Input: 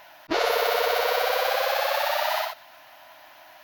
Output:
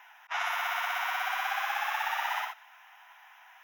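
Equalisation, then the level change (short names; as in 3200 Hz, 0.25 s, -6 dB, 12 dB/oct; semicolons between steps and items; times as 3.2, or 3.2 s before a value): running mean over 10 samples; elliptic high-pass 780 Hz, stop band 40 dB; tilt +3.5 dB/oct; -3.0 dB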